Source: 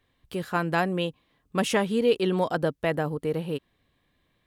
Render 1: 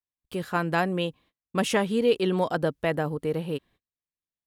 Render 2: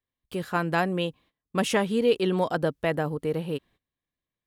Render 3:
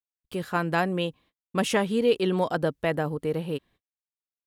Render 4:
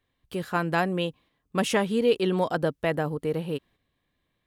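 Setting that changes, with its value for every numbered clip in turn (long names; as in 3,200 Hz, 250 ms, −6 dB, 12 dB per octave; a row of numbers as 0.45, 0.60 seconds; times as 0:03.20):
noise gate, range: −34, −21, −50, −6 decibels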